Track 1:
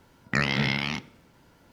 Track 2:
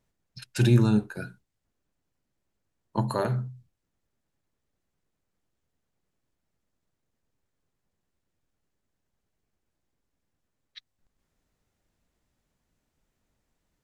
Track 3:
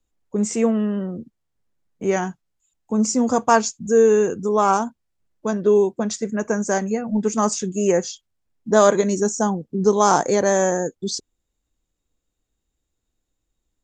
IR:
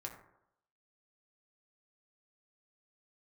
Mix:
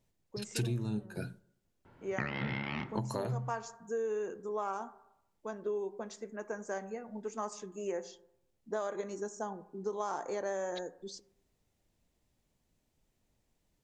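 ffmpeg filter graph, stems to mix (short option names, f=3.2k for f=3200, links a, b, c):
-filter_complex "[0:a]lowpass=2.1k,adelay=1850,volume=-4.5dB,asplit=2[a][b];[b]volume=-4dB[c];[1:a]equalizer=f=1.4k:w=1.8:g=-7,volume=-0.5dB,asplit=2[d][e];[e]volume=-15.5dB[f];[2:a]bass=f=250:g=-12,treble=f=4k:g=-8,volume=-17dB,asplit=2[g][h];[h]volume=-5.5dB[i];[3:a]atrim=start_sample=2205[j];[c][f][i]amix=inputs=3:normalize=0[k];[k][j]afir=irnorm=-1:irlink=0[l];[a][d][g][l]amix=inputs=4:normalize=0,acompressor=threshold=-31dB:ratio=12"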